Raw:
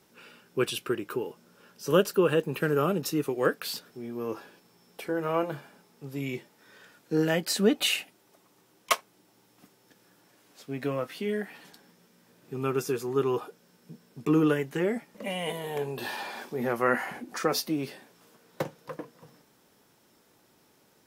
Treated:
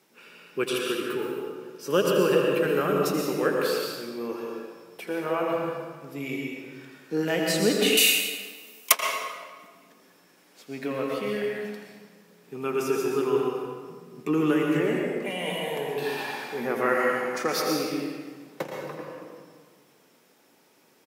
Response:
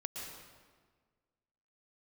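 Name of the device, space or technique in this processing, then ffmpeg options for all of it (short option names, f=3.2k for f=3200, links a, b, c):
PA in a hall: -filter_complex "[0:a]highpass=190,equalizer=f=2.3k:t=o:w=0.43:g=4,aecho=1:1:82:0.299[a];[1:a]atrim=start_sample=2205[b];[a][b]afir=irnorm=-1:irlink=0,asettb=1/sr,asplit=3[c][d][e];[c]atrim=end=7.974[f];[d]atrim=start=7.97:end=8.92,asetpts=PTS-STARTPTS,afade=t=in:d=0.004:c=qsin,afade=t=out:st=0.946:d=0.004:c=qsin,aemphasis=mode=production:type=riaa[g];[e]atrim=start=8.916[h];[f][g]acrossfade=d=0.004:c1=hsin:c2=qsin[i];[i][h]acrossfade=d=0.004:c1=qsin:c2=hsin,volume=2.5dB"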